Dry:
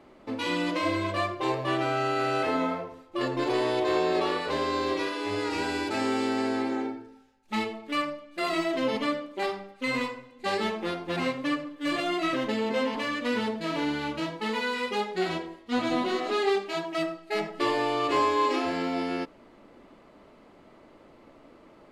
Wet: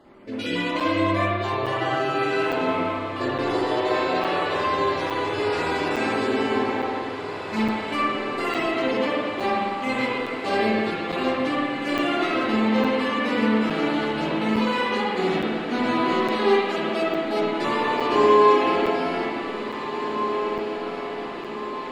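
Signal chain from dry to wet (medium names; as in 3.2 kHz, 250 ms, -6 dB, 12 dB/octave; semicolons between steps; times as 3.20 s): random holes in the spectrogram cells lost 23%; echo that smears into a reverb 1918 ms, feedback 66%, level -9 dB; spring tank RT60 1.7 s, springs 50/55 ms, chirp 70 ms, DRR -5.5 dB; crackling interface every 0.86 s, samples 256, zero, from 0.80 s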